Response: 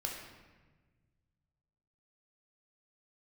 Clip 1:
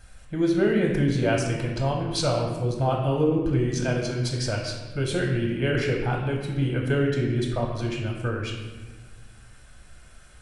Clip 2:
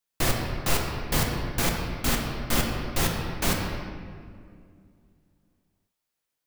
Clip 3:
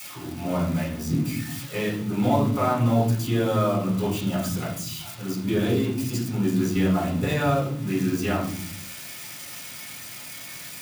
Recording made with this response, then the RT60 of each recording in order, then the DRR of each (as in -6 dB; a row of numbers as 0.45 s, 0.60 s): 1; 1.3 s, 2.2 s, no single decay rate; -1.5 dB, -0.5 dB, -8.5 dB